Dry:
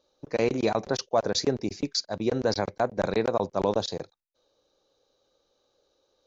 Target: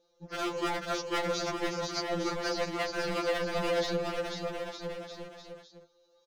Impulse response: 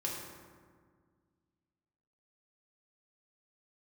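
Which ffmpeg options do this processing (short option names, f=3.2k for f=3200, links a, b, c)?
-filter_complex "[0:a]equalizer=f=650:w=0.84:g=2,acrossover=split=2000[a][b];[b]alimiter=level_in=1dB:limit=-24dB:level=0:latency=1,volume=-1dB[c];[a][c]amix=inputs=2:normalize=0,aeval=exprs='0.0708*(abs(mod(val(0)/0.0708+3,4)-2)-1)':c=same,aecho=1:1:490|906.5|1261|1561|1817:0.631|0.398|0.251|0.158|0.1,afftfilt=real='re*2.83*eq(mod(b,8),0)':imag='im*2.83*eq(mod(b,8),0)':win_size=2048:overlap=0.75"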